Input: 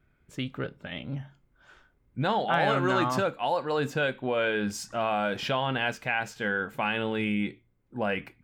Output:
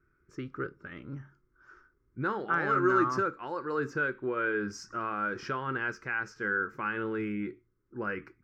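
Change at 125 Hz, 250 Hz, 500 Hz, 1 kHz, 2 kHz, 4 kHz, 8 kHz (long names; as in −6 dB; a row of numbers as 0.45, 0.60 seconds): −7.0, −3.0, −4.5, −3.0, −1.5, −16.0, −8.5 decibels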